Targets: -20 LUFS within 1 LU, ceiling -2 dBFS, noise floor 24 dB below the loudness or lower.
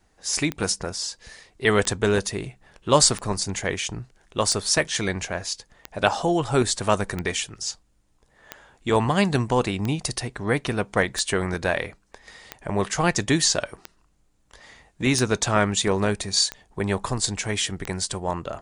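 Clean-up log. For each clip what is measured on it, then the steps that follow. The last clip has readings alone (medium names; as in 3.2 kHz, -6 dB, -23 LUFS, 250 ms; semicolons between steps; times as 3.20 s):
clicks found 14; loudness -24.0 LUFS; peak level -3.0 dBFS; loudness target -20.0 LUFS
-> de-click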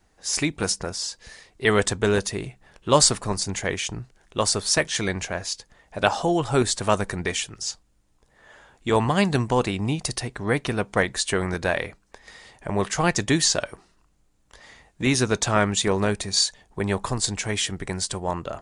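clicks found 0; loudness -24.0 LUFS; peak level -3.0 dBFS; loudness target -20.0 LUFS
-> trim +4 dB; peak limiter -2 dBFS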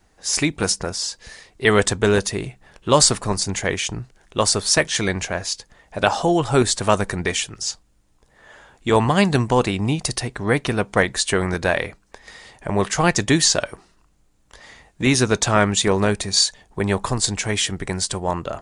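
loudness -20.0 LUFS; peak level -2.0 dBFS; noise floor -59 dBFS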